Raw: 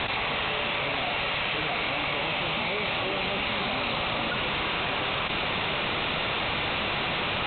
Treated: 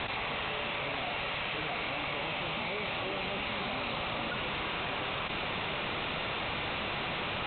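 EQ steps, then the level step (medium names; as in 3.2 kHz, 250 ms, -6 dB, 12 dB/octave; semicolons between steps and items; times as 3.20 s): distance through air 94 m; -5.5 dB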